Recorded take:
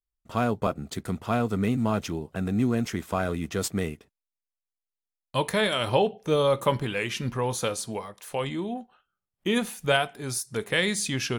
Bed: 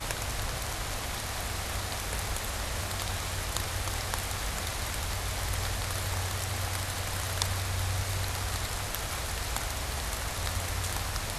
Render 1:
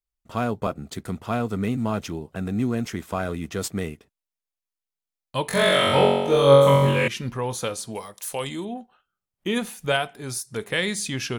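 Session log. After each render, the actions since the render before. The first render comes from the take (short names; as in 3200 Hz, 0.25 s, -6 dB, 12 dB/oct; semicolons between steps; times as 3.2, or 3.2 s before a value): 5.47–7.08 flutter echo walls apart 3.7 m, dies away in 1.2 s; 7.95–8.65 tone controls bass -2 dB, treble +12 dB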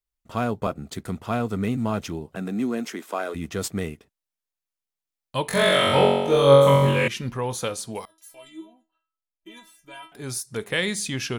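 2.35–3.34 HPF 150 Hz -> 330 Hz 24 dB/oct; 8.05–10.12 metallic resonator 320 Hz, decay 0.3 s, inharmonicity 0.002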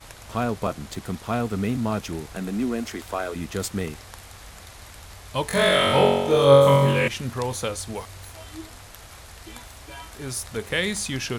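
add bed -10 dB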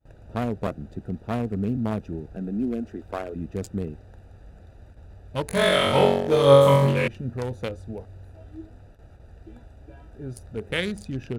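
Wiener smoothing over 41 samples; gate with hold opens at -40 dBFS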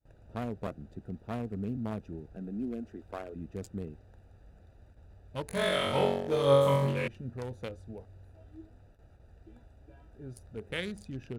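gain -9 dB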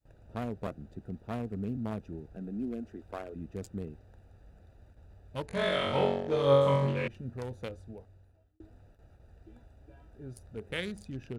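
5.46–7.1 air absorption 75 m; 7.77–8.6 fade out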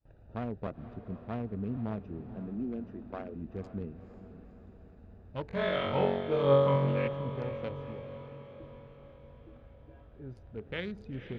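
air absorption 240 m; diffused feedback echo 0.498 s, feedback 56%, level -12 dB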